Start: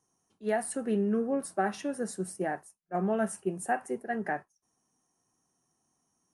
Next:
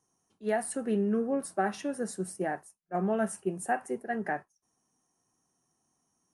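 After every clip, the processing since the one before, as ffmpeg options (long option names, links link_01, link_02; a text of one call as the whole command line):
ffmpeg -i in.wav -af anull out.wav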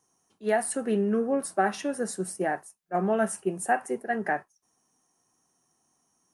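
ffmpeg -i in.wav -af "lowshelf=frequency=270:gain=-6,volume=5.5dB" out.wav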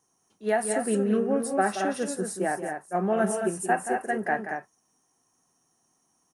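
ffmpeg -i in.wav -af "aecho=1:1:177.8|224.5:0.316|0.501" out.wav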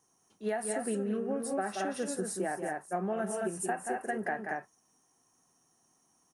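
ffmpeg -i in.wav -af "acompressor=threshold=-30dB:ratio=6" out.wav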